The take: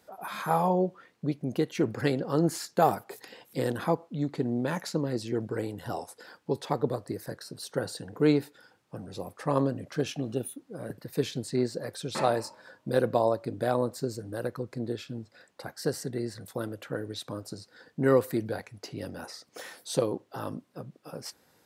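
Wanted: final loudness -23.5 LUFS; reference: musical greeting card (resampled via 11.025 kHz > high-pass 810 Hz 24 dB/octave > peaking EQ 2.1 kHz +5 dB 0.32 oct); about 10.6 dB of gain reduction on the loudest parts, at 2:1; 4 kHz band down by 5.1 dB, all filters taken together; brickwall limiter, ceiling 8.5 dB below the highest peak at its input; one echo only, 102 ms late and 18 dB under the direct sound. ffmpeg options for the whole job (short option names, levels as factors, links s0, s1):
-af "equalizer=f=4000:t=o:g=-6.5,acompressor=threshold=0.0126:ratio=2,alimiter=level_in=1.58:limit=0.0631:level=0:latency=1,volume=0.631,aecho=1:1:102:0.126,aresample=11025,aresample=44100,highpass=f=810:w=0.5412,highpass=f=810:w=1.3066,equalizer=f=2100:t=o:w=0.32:g=5,volume=20"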